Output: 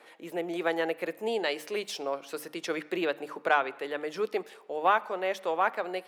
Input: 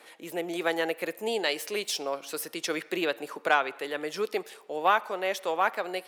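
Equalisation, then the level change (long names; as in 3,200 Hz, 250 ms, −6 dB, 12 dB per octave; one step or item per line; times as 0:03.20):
high-shelf EQ 3,600 Hz −10.5 dB
mains-hum notches 50/100/150/200/250/300 Hz
0.0 dB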